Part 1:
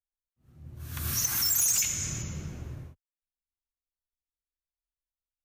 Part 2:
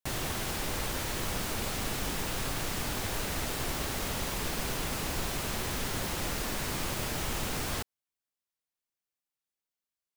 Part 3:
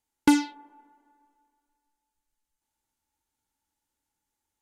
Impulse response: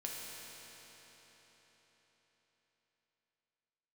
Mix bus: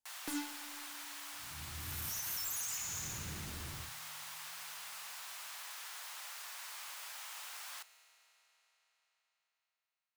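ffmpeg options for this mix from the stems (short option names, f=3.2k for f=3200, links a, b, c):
-filter_complex "[0:a]acompressor=threshold=-34dB:ratio=6,asoftclip=type=hard:threshold=-38dB,adelay=950,volume=-5dB,asplit=2[a][b];[b]volume=-15.5dB[c];[1:a]highpass=f=880:w=0.5412,highpass=f=880:w=1.3066,highshelf=f=6.3k:g=-4,volume=-13dB,asplit=2[d][e];[e]volume=-11.5dB[f];[2:a]aeval=exprs='0.0841*(abs(mod(val(0)/0.0841+3,4)-2)-1)':c=same,volume=-13.5dB,asplit=2[g][h];[h]volume=-10.5dB[i];[3:a]atrim=start_sample=2205[j];[c][f][i]amix=inputs=3:normalize=0[k];[k][j]afir=irnorm=-1:irlink=0[l];[a][d][g][l]amix=inputs=4:normalize=0,highshelf=f=5.1k:g=5.5,bandreject=f=60:t=h:w=6,bandreject=f=120:t=h:w=6"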